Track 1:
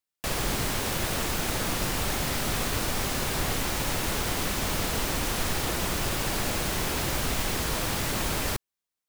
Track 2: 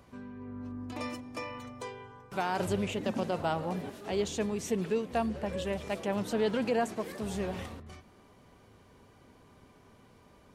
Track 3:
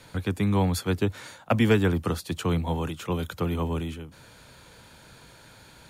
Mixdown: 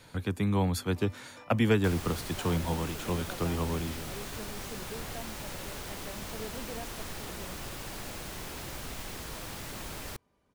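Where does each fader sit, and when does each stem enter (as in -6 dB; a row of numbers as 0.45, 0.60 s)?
-12.0, -14.0, -4.0 dB; 1.60, 0.00, 0.00 s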